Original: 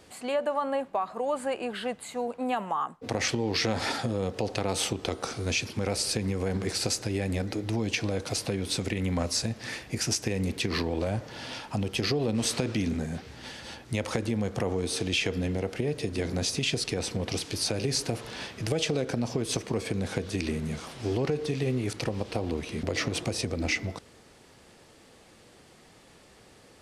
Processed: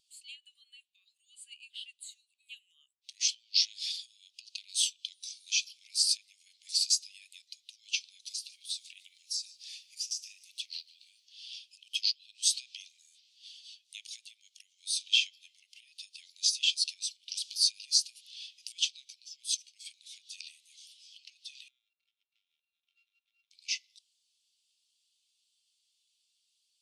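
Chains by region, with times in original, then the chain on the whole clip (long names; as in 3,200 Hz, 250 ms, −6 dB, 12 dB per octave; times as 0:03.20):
0:08.32–0:11.25: low-shelf EQ 480 Hz −9 dB + downward compressor 5 to 1, threshold −31 dBFS + feedback echo at a low word length 148 ms, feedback 55%, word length 9 bits, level −13.5 dB
0:21.68–0:23.51: samples sorted by size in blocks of 32 samples + low-pass filter 1,100 Hz 24 dB per octave + windowed peak hold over 5 samples
whole clip: Butterworth high-pass 2,900 Hz 36 dB per octave; every bin expanded away from the loudest bin 1.5 to 1; level +3.5 dB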